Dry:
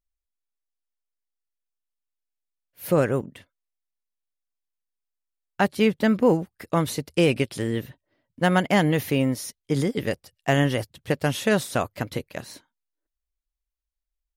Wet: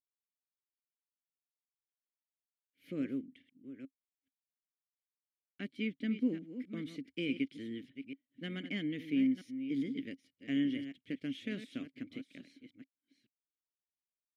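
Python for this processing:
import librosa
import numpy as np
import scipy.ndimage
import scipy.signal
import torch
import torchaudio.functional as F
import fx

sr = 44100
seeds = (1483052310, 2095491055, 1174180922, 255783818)

y = fx.reverse_delay(x, sr, ms=428, wet_db=-10.5)
y = fx.vowel_filter(y, sr, vowel='i')
y = y * librosa.db_to_amplitude(-4.0)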